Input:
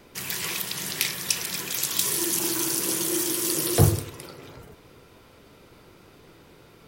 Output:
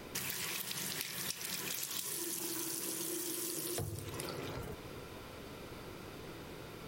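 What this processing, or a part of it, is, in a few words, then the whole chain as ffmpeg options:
serial compression, peaks first: -af "acompressor=threshold=-33dB:ratio=6,acompressor=threshold=-42dB:ratio=3,volume=3.5dB"

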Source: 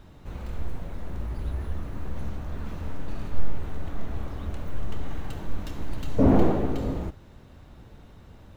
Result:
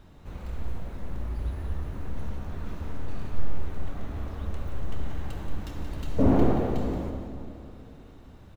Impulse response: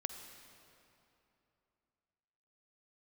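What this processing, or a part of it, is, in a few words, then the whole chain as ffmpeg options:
cave: -filter_complex "[0:a]aecho=1:1:178:0.335[link_01];[1:a]atrim=start_sample=2205[link_02];[link_01][link_02]afir=irnorm=-1:irlink=0,volume=-1.5dB"

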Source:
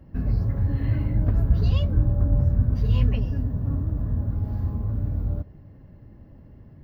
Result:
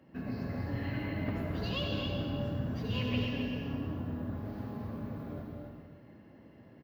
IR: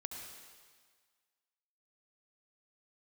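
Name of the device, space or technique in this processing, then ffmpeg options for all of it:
stadium PA: -filter_complex "[0:a]highpass=230,equalizer=frequency=2700:width_type=o:width=1.4:gain=6.5,aecho=1:1:221.6|265.3:0.316|0.501[link_01];[1:a]atrim=start_sample=2205[link_02];[link_01][link_02]afir=irnorm=-1:irlink=0"

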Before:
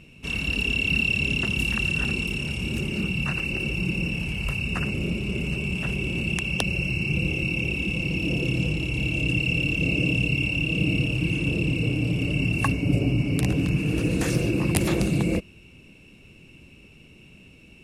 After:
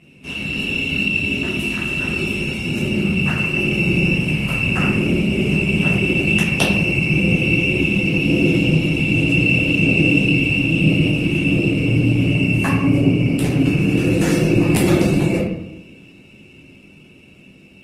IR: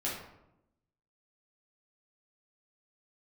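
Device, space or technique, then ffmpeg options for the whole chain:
far-field microphone of a smart speaker: -filter_complex "[0:a]asettb=1/sr,asplit=3[link_01][link_02][link_03];[link_01]atrim=end=1.124[link_04];[link_02]atrim=start=1.12:end=2.32,asetpts=PTS-STARTPTS,afade=type=in:duration=0.004:curve=qsin,afade=type=out:start_time=1.196:duration=0.004:curve=qsin,aecho=1:1:3.1:0.36,atrim=end_sample=52920[link_05];[link_03]atrim=start=2.316[link_06];[link_04][link_05]acrossfade=duration=0.004:curve1=hsin:curve2=qsin[link_07];[link_07][link_06]acrossfade=duration=0.004:curve1=qsin:curve2=hsin[link_08];[1:a]atrim=start_sample=2205[link_09];[link_08][link_09]afir=irnorm=-1:irlink=0,highpass=110,dynaudnorm=framelen=830:gausssize=7:maxgain=9dB" -ar 48000 -c:a libopus -b:a 20k

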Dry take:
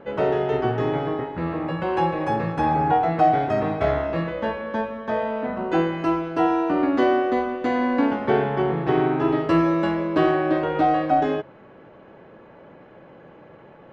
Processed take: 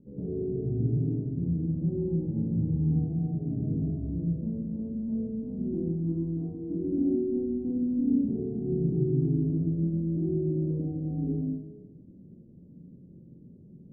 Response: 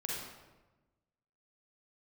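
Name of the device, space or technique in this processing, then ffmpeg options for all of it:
club heard from the street: -filter_complex "[0:a]alimiter=limit=-14.5dB:level=0:latency=1,lowpass=frequency=250:width=0.5412,lowpass=frequency=250:width=1.3066[link_01];[1:a]atrim=start_sample=2205[link_02];[link_01][link_02]afir=irnorm=-1:irlink=0"

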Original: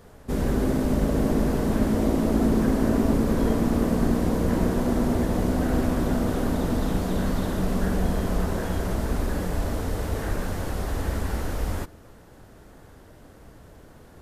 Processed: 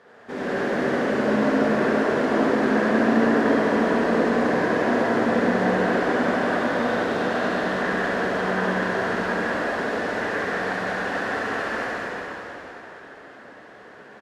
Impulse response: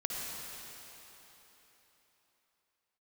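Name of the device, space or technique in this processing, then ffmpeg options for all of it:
station announcement: -filter_complex "[0:a]highpass=360,lowpass=3800,equalizer=frequency=1700:width_type=o:width=0.5:gain=8,aecho=1:1:69.97|192.4:0.708|0.708[link_01];[1:a]atrim=start_sample=2205[link_02];[link_01][link_02]afir=irnorm=-1:irlink=0,volume=1dB"

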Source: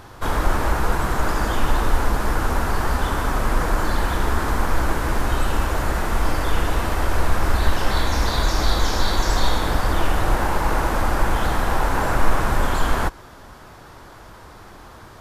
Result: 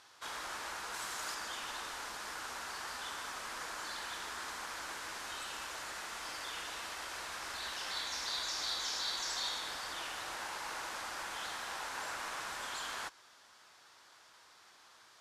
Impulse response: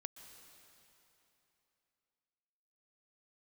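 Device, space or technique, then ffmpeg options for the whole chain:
piezo pickup straight into a mixer: -filter_complex "[0:a]lowpass=5500,aderivative,asettb=1/sr,asplit=3[link_01][link_02][link_03];[link_01]atrim=end=0.944[link_04];[link_02]atrim=start=0.94:end=1.35,asetpts=PTS-STARTPTS,afade=type=in:duration=0.004:curve=qsin,afade=type=out:start_time=0.406:duration=0.004:curve=qsin,highshelf=frequency=4300:gain=6[link_05];[link_03]atrim=start=1.346[link_06];[link_04][link_05]acrossfade=duration=0.004:curve1=hsin:curve2=qsin[link_07];[link_07][link_06]acrossfade=duration=0.004:curve1=qsin:curve2=hsin,volume=-2dB"

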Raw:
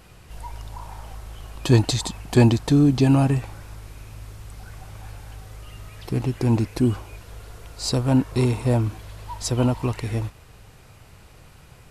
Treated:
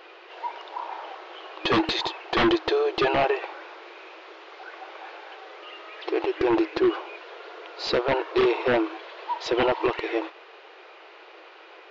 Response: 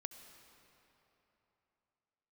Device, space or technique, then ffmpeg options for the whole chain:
synthesiser wavefolder: -af "afftfilt=real='re*between(b*sr/4096,320,7300)':imag='im*between(b*sr/4096,320,7300)':win_size=4096:overlap=0.75,aeval=exprs='0.0794*(abs(mod(val(0)/0.0794+3,4)-2)-1)':channel_layout=same,lowpass=frequency=3700:width=0.5412,lowpass=frequency=3700:width=1.3066,volume=7.5dB"

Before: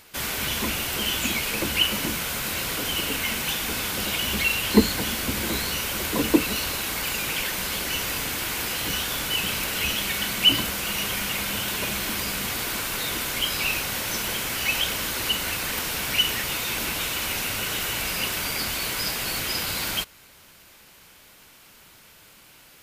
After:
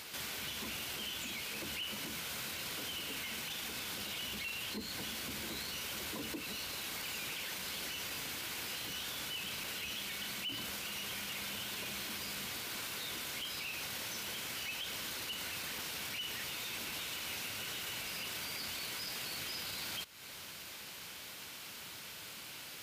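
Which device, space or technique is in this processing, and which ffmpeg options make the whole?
broadcast voice chain: -af "highpass=80,deesser=0.4,acompressor=threshold=-40dB:ratio=4,equalizer=frequency=4000:width_type=o:width=1.7:gain=5,alimiter=level_in=9.5dB:limit=-24dB:level=0:latency=1:release=14,volume=-9.5dB,volume=1dB"

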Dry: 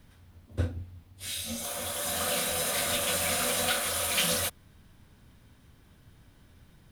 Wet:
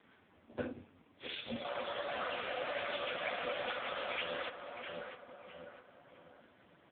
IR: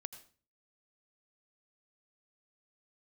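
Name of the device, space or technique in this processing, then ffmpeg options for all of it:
voicemail: -filter_complex "[0:a]asettb=1/sr,asplit=3[link_01][link_02][link_03];[link_01]atrim=end=1.894[link_04];[link_02]atrim=start=1.89:end=3.18,asetpts=PTS-STARTPTS,afade=type=in:duration=0.004:curve=qsin,afade=type=out:start_time=1.286:duration=0.004:curve=qsin,bandreject=frequency=60:width_type=h:width=6,bandreject=frequency=120:width_type=h:width=6,bandreject=frequency=180:width_type=h:width=6,bandreject=frequency=240:width_type=h:width=6,bandreject=frequency=300:width_type=h:width=6,bandreject=frequency=360:width_type=h:width=6,bandreject=frequency=420:width_type=h:width=6,bandreject=frequency=480:width_type=h:width=6,bandreject=frequency=540:width_type=h:width=6,bandreject=frequency=600:width_type=h:width=6[link_05];[link_03]atrim=start=3.176[link_06];[link_04][link_05]acrossfade=duration=0.004:curve1=hsin:curve2=qsin[link_07];[link_07][link_06]acrossfade=duration=0.004:curve1=qsin:curve2=hsin,highpass=310,lowpass=3200,asplit=2[link_08][link_09];[link_09]adelay=655,lowpass=frequency=1900:poles=1,volume=-11.5dB,asplit=2[link_10][link_11];[link_11]adelay=655,lowpass=frequency=1900:poles=1,volume=0.44,asplit=2[link_12][link_13];[link_13]adelay=655,lowpass=frequency=1900:poles=1,volume=0.44,asplit=2[link_14][link_15];[link_15]adelay=655,lowpass=frequency=1900:poles=1,volume=0.44[link_16];[link_08][link_10][link_12][link_14][link_16]amix=inputs=5:normalize=0,acompressor=threshold=-35dB:ratio=6,volume=5dB" -ar 8000 -c:a libopencore_amrnb -b:a 5150

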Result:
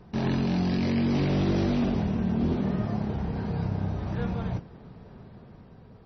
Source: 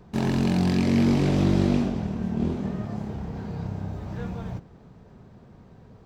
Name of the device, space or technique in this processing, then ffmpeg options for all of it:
low-bitrate web radio: -af "dynaudnorm=framelen=280:gausssize=7:maxgain=3.5dB,alimiter=limit=-18dB:level=0:latency=1:release=10" -ar 24000 -c:a libmp3lame -b:a 24k

